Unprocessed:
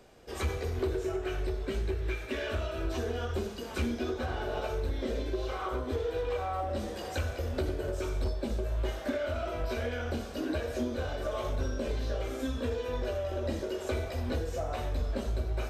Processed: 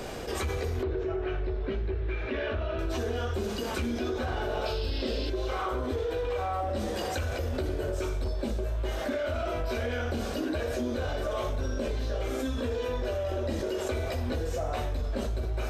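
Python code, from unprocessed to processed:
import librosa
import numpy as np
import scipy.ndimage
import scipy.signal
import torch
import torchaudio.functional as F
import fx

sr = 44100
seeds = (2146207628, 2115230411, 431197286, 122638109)

y = fx.air_absorb(x, sr, metres=280.0, at=(0.83, 2.79))
y = fx.spec_paint(y, sr, seeds[0], shape='noise', start_s=4.65, length_s=0.65, low_hz=2500.0, high_hz=5400.0, level_db=-44.0)
y = fx.env_flatten(y, sr, amount_pct=70)
y = y * 10.0 ** (-2.0 / 20.0)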